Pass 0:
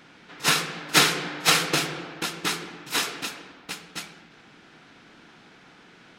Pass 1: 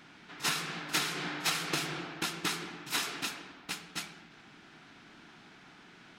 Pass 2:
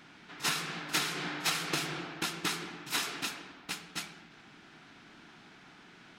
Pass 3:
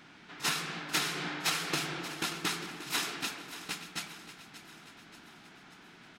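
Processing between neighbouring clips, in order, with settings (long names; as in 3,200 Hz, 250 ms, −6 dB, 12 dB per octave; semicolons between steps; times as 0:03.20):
parametric band 500 Hz −8 dB 0.32 octaves; downward compressor 8 to 1, threshold −25 dBFS, peak gain reduction 12.5 dB; level −3 dB
no processing that can be heard
repeating echo 582 ms, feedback 53%, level −13.5 dB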